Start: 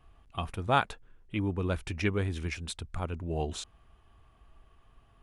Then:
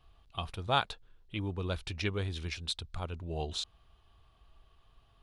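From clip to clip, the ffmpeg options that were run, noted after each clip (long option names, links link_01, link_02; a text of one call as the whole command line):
ffmpeg -i in.wav -af "equalizer=frequency=250:width_type=o:width=1:gain=-5,equalizer=frequency=2000:width_type=o:width=1:gain=-4,equalizer=frequency=4000:width_type=o:width=1:gain=11,equalizer=frequency=8000:width_type=o:width=1:gain=-3,volume=-3dB" out.wav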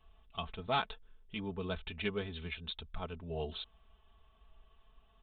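ffmpeg -i in.wav -af "aecho=1:1:4.6:0.75,aresample=8000,volume=22.5dB,asoftclip=hard,volume=-22.5dB,aresample=44100,volume=-3.5dB" out.wav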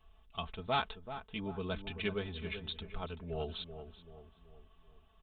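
ffmpeg -i in.wav -filter_complex "[0:a]asplit=2[link_01][link_02];[link_02]adelay=383,lowpass=frequency=1300:poles=1,volume=-9.5dB,asplit=2[link_03][link_04];[link_04]adelay=383,lowpass=frequency=1300:poles=1,volume=0.47,asplit=2[link_05][link_06];[link_06]adelay=383,lowpass=frequency=1300:poles=1,volume=0.47,asplit=2[link_07][link_08];[link_08]adelay=383,lowpass=frequency=1300:poles=1,volume=0.47,asplit=2[link_09][link_10];[link_10]adelay=383,lowpass=frequency=1300:poles=1,volume=0.47[link_11];[link_01][link_03][link_05][link_07][link_09][link_11]amix=inputs=6:normalize=0" out.wav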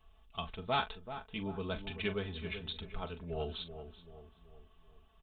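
ffmpeg -i in.wav -filter_complex "[0:a]asplit=2[link_01][link_02];[link_02]adelay=41,volume=-12.5dB[link_03];[link_01][link_03]amix=inputs=2:normalize=0" out.wav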